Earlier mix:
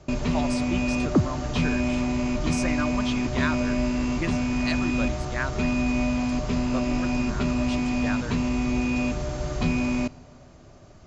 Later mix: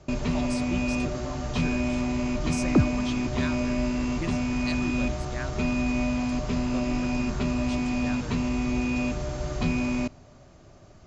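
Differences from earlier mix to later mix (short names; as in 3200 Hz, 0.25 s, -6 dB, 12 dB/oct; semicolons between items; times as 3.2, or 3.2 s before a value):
speech: add bell 1200 Hz -9.5 dB 2.9 oct; first sound: send -7.5 dB; second sound: entry +1.60 s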